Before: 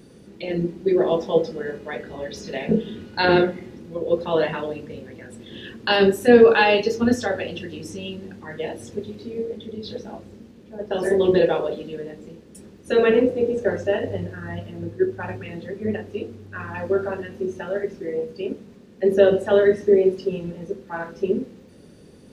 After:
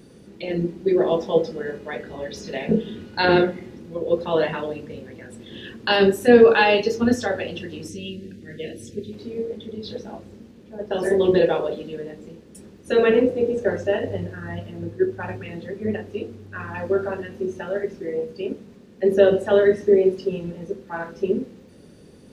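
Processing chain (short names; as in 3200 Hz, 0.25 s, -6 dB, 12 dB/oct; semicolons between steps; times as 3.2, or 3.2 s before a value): 7.88–9.13 Butterworth band-stop 980 Hz, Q 0.61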